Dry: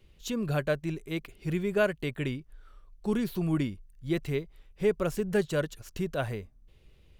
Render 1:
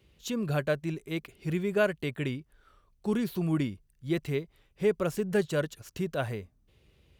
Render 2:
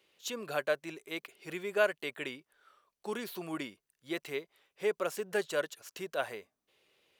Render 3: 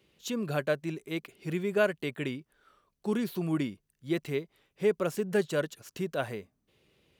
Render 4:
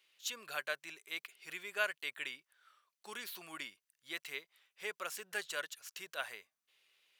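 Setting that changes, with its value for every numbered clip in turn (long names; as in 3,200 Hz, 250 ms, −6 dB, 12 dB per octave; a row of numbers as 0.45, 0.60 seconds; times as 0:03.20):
high-pass filter, corner frequency: 64, 520, 180, 1,400 Hertz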